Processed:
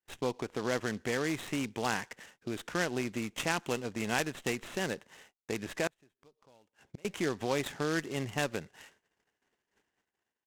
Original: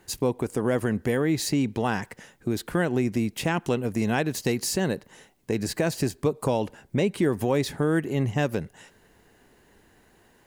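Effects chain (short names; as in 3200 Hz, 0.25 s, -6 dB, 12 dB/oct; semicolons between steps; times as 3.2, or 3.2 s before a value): gate -55 dBFS, range -33 dB; tilt +3 dB/oct; added harmonics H 6 -27 dB, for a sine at -7.5 dBFS; 5.87–7.05 flipped gate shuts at -25 dBFS, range -30 dB; downsampling 8000 Hz; noise-modulated delay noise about 3900 Hz, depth 0.042 ms; gain -5 dB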